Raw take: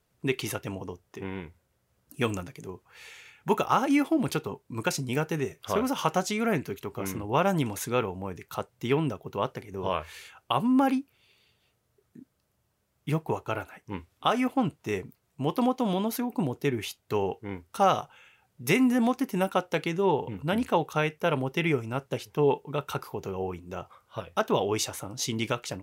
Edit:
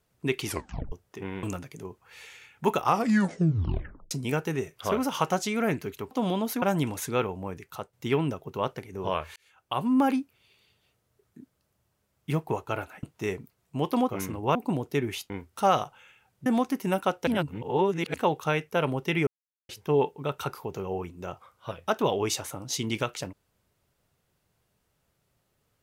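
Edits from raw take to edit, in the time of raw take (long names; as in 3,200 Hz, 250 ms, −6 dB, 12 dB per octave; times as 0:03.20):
0:00.46: tape stop 0.46 s
0:01.43–0:02.27: remove
0:03.67: tape stop 1.28 s
0:06.95–0:07.41: swap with 0:15.74–0:16.25
0:08.30–0:08.72: fade out, to −7.5 dB
0:10.15–0:10.73: fade in
0:13.82–0:14.68: remove
0:17.00–0:17.47: remove
0:18.63–0:18.95: remove
0:19.76–0:20.63: reverse
0:21.76–0:22.18: silence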